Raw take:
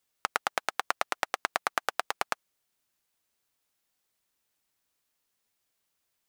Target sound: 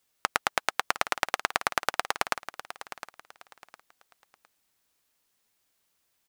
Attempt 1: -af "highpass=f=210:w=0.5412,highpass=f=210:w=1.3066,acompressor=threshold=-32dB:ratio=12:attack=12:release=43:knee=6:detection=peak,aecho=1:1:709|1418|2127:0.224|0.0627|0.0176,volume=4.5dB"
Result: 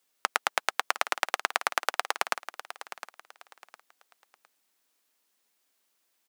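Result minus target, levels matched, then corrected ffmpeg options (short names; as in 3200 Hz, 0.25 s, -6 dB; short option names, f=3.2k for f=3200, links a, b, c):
250 Hz band -6.5 dB
-af "acompressor=threshold=-32dB:ratio=12:attack=12:release=43:knee=6:detection=peak,aecho=1:1:709|1418|2127:0.224|0.0627|0.0176,volume=4.5dB"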